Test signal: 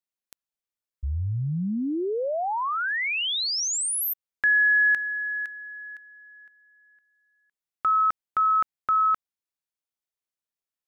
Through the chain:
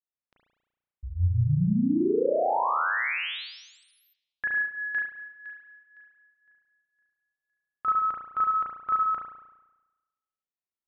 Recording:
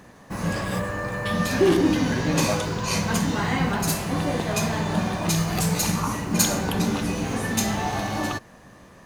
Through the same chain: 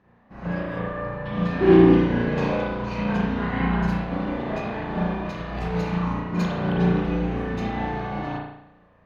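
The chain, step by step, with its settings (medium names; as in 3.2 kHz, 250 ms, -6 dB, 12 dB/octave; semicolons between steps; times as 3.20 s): distance through air 300 m; spring tank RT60 1.1 s, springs 34 ms, chirp 50 ms, DRR -5.5 dB; upward expansion 1.5:1, over -34 dBFS; trim -2 dB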